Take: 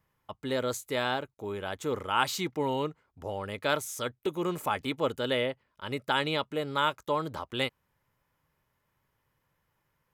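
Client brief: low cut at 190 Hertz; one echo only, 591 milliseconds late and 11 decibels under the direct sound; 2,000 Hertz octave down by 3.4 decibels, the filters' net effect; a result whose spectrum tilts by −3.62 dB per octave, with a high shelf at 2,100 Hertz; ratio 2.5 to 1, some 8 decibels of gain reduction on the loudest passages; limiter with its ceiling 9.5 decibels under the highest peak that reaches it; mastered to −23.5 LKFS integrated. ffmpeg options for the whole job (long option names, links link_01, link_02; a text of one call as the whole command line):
ffmpeg -i in.wav -af "highpass=190,equalizer=frequency=2000:width_type=o:gain=-7.5,highshelf=frequency=2100:gain=4.5,acompressor=threshold=-35dB:ratio=2.5,alimiter=level_in=5dB:limit=-24dB:level=0:latency=1,volume=-5dB,aecho=1:1:591:0.282,volume=17.5dB" out.wav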